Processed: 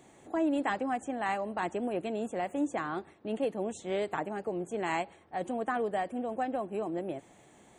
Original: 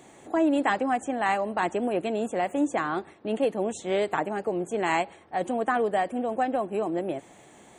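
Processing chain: bass shelf 180 Hz +5 dB; trim -7 dB

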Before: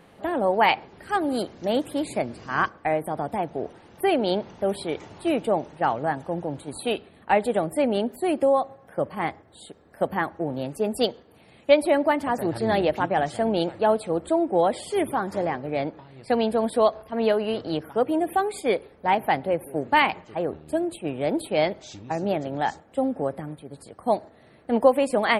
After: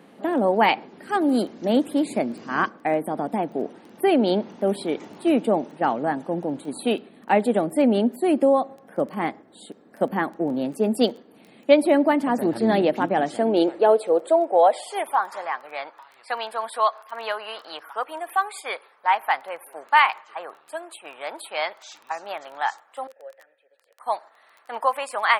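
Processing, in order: 23.07–24.00 s: vowel filter e; crackle 10 per s -36 dBFS; high-pass sweep 230 Hz -> 1.1 kHz, 13.14–15.43 s

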